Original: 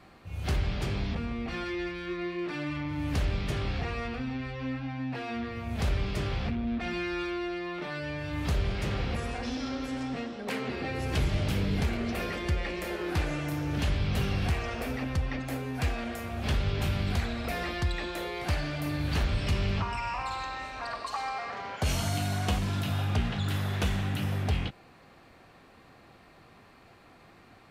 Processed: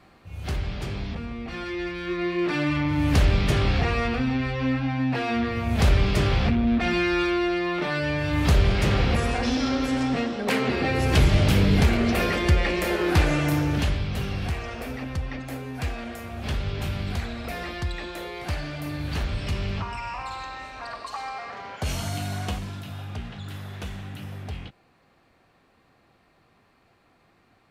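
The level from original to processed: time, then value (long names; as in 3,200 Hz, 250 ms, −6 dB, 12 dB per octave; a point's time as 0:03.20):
0:01.45 0 dB
0:02.49 +9.5 dB
0:13.57 +9.5 dB
0:14.09 0 dB
0:22.42 0 dB
0:22.82 −6.5 dB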